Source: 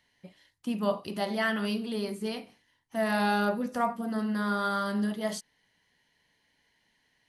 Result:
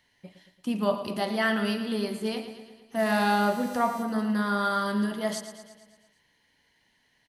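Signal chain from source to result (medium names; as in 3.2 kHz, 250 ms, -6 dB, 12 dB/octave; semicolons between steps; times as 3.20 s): 2.98–4.02 s: mains buzz 400 Hz, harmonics 36, -53 dBFS -1 dB/octave; on a send: feedback delay 113 ms, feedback 59%, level -11 dB; on the sum: trim +2.5 dB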